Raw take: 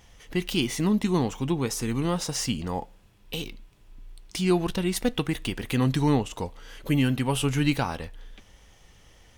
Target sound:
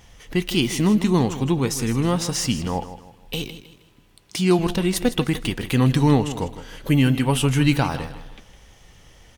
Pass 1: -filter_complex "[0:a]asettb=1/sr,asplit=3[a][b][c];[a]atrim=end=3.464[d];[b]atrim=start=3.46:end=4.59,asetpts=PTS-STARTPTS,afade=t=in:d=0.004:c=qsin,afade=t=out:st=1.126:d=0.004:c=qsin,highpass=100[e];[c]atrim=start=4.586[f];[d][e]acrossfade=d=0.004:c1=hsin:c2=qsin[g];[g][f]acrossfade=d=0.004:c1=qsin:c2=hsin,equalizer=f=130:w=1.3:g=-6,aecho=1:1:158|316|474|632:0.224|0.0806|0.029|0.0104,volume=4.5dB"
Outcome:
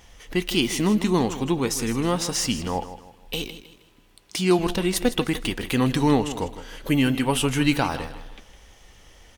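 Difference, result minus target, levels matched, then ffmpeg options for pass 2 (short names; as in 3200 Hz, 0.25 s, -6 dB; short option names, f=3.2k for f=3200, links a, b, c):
125 Hz band -4.5 dB
-filter_complex "[0:a]asettb=1/sr,asplit=3[a][b][c];[a]atrim=end=3.464[d];[b]atrim=start=3.46:end=4.59,asetpts=PTS-STARTPTS,afade=t=in:d=0.004:c=qsin,afade=t=out:st=1.126:d=0.004:c=qsin,highpass=100[e];[c]atrim=start=4.586[f];[d][e]acrossfade=d=0.004:c1=hsin:c2=qsin[g];[g][f]acrossfade=d=0.004:c1=qsin:c2=hsin,equalizer=f=130:w=1.3:g=2,aecho=1:1:158|316|474|632:0.224|0.0806|0.029|0.0104,volume=4.5dB"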